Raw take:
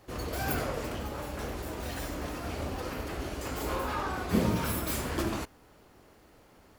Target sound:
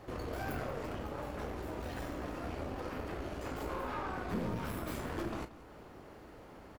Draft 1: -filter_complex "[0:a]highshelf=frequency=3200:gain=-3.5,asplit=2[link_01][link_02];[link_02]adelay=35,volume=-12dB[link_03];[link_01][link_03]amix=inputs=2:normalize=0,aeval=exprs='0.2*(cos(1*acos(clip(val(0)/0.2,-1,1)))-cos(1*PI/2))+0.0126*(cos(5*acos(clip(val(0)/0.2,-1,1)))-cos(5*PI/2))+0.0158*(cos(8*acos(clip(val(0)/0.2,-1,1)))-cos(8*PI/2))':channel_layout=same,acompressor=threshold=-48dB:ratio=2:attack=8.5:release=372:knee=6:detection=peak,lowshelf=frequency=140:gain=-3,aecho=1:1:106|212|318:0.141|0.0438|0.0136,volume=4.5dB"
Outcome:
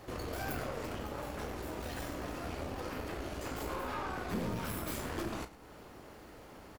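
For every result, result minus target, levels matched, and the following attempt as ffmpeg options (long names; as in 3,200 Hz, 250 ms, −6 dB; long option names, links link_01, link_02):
echo 75 ms early; 8,000 Hz band +6.5 dB
-filter_complex "[0:a]highshelf=frequency=3200:gain=-3.5,asplit=2[link_01][link_02];[link_02]adelay=35,volume=-12dB[link_03];[link_01][link_03]amix=inputs=2:normalize=0,aeval=exprs='0.2*(cos(1*acos(clip(val(0)/0.2,-1,1)))-cos(1*PI/2))+0.0126*(cos(5*acos(clip(val(0)/0.2,-1,1)))-cos(5*PI/2))+0.0158*(cos(8*acos(clip(val(0)/0.2,-1,1)))-cos(8*PI/2))':channel_layout=same,acompressor=threshold=-48dB:ratio=2:attack=8.5:release=372:knee=6:detection=peak,lowshelf=frequency=140:gain=-3,aecho=1:1:181|362|543:0.141|0.0438|0.0136,volume=4.5dB"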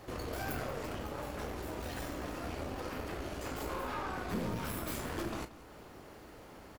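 8,000 Hz band +6.5 dB
-filter_complex "[0:a]highshelf=frequency=3200:gain=-12,asplit=2[link_01][link_02];[link_02]adelay=35,volume=-12dB[link_03];[link_01][link_03]amix=inputs=2:normalize=0,aeval=exprs='0.2*(cos(1*acos(clip(val(0)/0.2,-1,1)))-cos(1*PI/2))+0.0126*(cos(5*acos(clip(val(0)/0.2,-1,1)))-cos(5*PI/2))+0.0158*(cos(8*acos(clip(val(0)/0.2,-1,1)))-cos(8*PI/2))':channel_layout=same,acompressor=threshold=-48dB:ratio=2:attack=8.5:release=372:knee=6:detection=peak,lowshelf=frequency=140:gain=-3,aecho=1:1:181|362|543:0.141|0.0438|0.0136,volume=4.5dB"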